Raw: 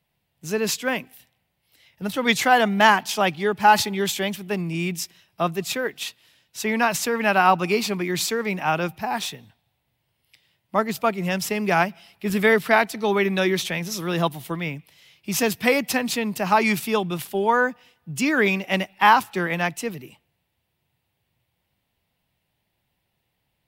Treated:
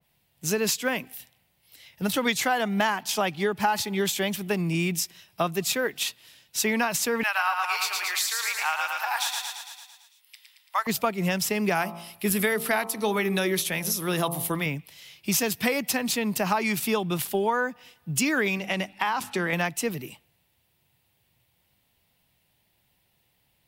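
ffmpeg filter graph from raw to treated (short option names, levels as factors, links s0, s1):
-filter_complex "[0:a]asettb=1/sr,asplit=3[s0][s1][s2];[s0]atrim=end=7.234[s3];[s1]atrim=start=7.23:end=10.87,asetpts=PTS-STARTPTS,afade=t=in:d=0.004:c=qsin,afade=t=out:st=3.636:d=0.004:c=qsin,highpass=f=940:w=0.5412,highpass=f=940:w=1.3066,aecho=1:1:112|224|336|448|560|672|784|896:0.562|0.321|0.183|0.104|0.0594|0.0338|0.0193|0.011,atrim=end_sample=160524[s4];[s2]atrim=start=10.866[s5];[s3][s4]acrossfade=d=0.004:c1=hsin:c2=qsin[s6];[s6][s5]acrossfade=d=0.004:c1=qsin:c2=hsin,asettb=1/sr,asplit=3[s7][s8][s9];[s7]atrim=end=11.754[s10];[s8]atrim=start=11.75:end=14.66,asetpts=PTS-STARTPTS,afade=t=in:d=0.004:c=qsin,afade=t=out:st=2.906:d=0.004:c=qsin,equalizer=f=11000:w=1.5:g=12,bandreject=f=56.75:t=h:w=4,bandreject=f=113.5:t=h:w=4,bandreject=f=170.25:t=h:w=4,bandreject=f=227:t=h:w=4,bandreject=f=283.75:t=h:w=4,bandreject=f=340.5:t=h:w=4,bandreject=f=397.25:t=h:w=4,bandreject=f=454:t=h:w=4,bandreject=f=510.75:t=h:w=4,bandreject=f=567.5:t=h:w=4,bandreject=f=624.25:t=h:w=4,bandreject=f=681:t=h:w=4,bandreject=f=737.75:t=h:w=4,bandreject=f=794.5:t=h:w=4,bandreject=f=851.25:t=h:w=4,bandreject=f=908:t=h:w=4,bandreject=f=964.75:t=h:w=4,bandreject=f=1021.5:t=h:w=4,bandreject=f=1078.25:t=h:w=4,bandreject=f=1135:t=h:w=4,bandreject=f=1191.75:t=h:w=4,bandreject=f=1248.5:t=h:w=4,bandreject=f=1305.25:t=h:w=4[s11];[s9]atrim=start=14.656[s12];[s10][s11]acrossfade=d=0.004:c1=hsin:c2=qsin[s13];[s13][s12]acrossfade=d=0.004:c1=qsin:c2=hsin,asettb=1/sr,asplit=3[s14][s15][s16];[s14]atrim=end=18.574[s17];[s15]atrim=start=18.57:end=19.53,asetpts=PTS-STARTPTS,afade=t=in:d=0.004:c=qsin,afade=t=out:st=0.956:d=0.004:c=qsin,lowpass=11000,acompressor=threshold=0.0708:ratio=6:attack=3.2:release=140:knee=1:detection=peak,bandreject=f=50:t=h:w=6,bandreject=f=100:t=h:w=6,bandreject=f=150:t=h:w=6,bandreject=f=200:t=h:w=6,bandreject=f=250:t=h:w=6,bandreject=f=300:t=h:w=6[s18];[s16]atrim=start=19.526[s19];[s17][s18]acrossfade=d=0.004:c1=hsin:c2=qsin[s20];[s20][s19]acrossfade=d=0.004:c1=qsin:c2=hsin,highshelf=f=3800:g=7.5,acompressor=threshold=0.0631:ratio=6,adynamicequalizer=threshold=0.00794:dfrequency=2000:dqfactor=0.7:tfrequency=2000:tqfactor=0.7:attack=5:release=100:ratio=0.375:range=1.5:mode=cutabove:tftype=highshelf,volume=1.33"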